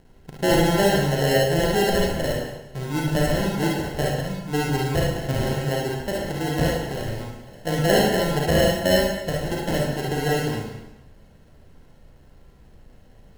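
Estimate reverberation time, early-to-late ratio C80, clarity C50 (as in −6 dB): 0.90 s, 4.0 dB, −2.0 dB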